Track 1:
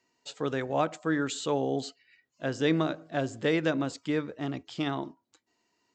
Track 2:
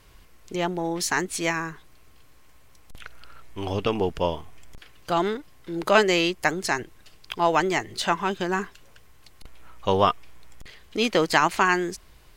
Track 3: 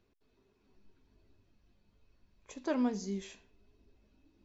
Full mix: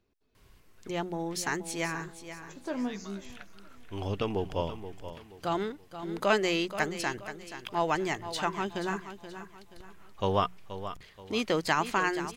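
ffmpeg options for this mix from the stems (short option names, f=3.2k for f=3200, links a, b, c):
-filter_complex "[0:a]highpass=1.1k,adelay=250,volume=-13dB,asplit=2[a][b];[b]volume=-15.5dB[c];[1:a]equalizer=f=110:w=0.77:g=5,bandreject=f=60:t=h:w=6,bandreject=f=120:t=h:w=6,bandreject=f=180:t=h:w=6,adelay=350,volume=-7.5dB,asplit=2[d][e];[e]volume=-11.5dB[f];[2:a]volume=-2dB,asplit=3[g][h][i];[h]volume=-19.5dB[j];[i]apad=whole_len=273236[k];[a][k]sidechaingate=range=-33dB:threshold=-60dB:ratio=16:detection=peak[l];[c][f][j]amix=inputs=3:normalize=0,aecho=0:1:478|956|1434|1912|2390:1|0.36|0.13|0.0467|0.0168[m];[l][d][g][m]amix=inputs=4:normalize=0"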